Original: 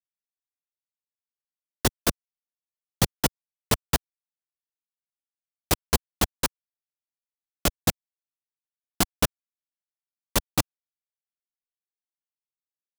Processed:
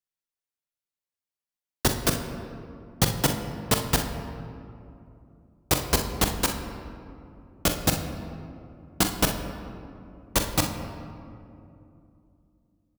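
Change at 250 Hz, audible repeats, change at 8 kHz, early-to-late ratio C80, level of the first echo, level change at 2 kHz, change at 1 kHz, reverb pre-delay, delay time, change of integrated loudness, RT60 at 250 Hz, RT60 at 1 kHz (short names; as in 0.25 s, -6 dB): +2.5 dB, 1, +1.0 dB, 8.0 dB, -10.0 dB, +1.5 dB, +1.5 dB, 6 ms, 43 ms, 0.0 dB, 3.6 s, 2.5 s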